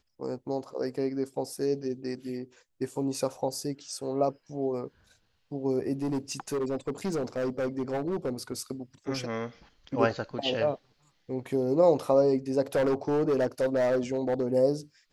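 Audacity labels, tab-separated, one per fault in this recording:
6.020000	8.530000	clipped -26 dBFS
12.750000	14.520000	clipped -21.5 dBFS

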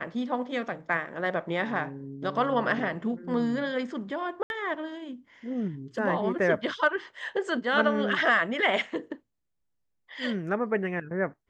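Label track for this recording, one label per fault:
4.430000	4.500000	gap 71 ms

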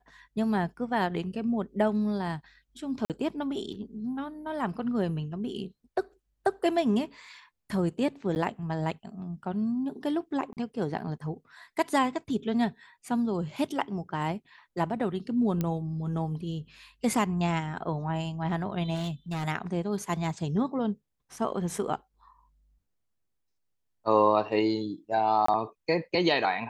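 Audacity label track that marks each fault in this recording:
3.050000	3.100000	gap 48 ms
8.350000	8.360000	gap 9.8 ms
10.530000	10.570000	gap 38 ms
15.610000	15.610000	pop -16 dBFS
18.940000	19.470000	clipped -28.5 dBFS
25.460000	25.480000	gap 24 ms

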